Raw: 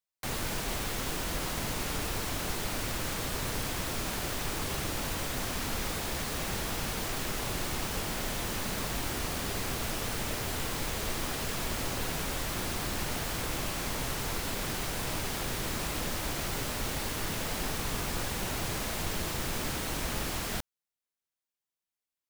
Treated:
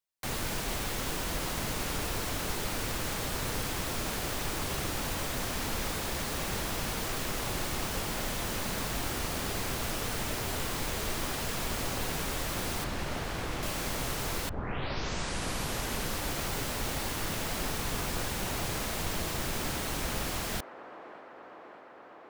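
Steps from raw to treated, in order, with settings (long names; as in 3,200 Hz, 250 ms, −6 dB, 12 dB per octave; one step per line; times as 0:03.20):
0:12.84–0:13.63: low-pass filter 3,300 Hz 6 dB per octave
0:14.49: tape start 1.81 s
delay with a band-pass on its return 594 ms, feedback 78%, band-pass 750 Hz, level −10.5 dB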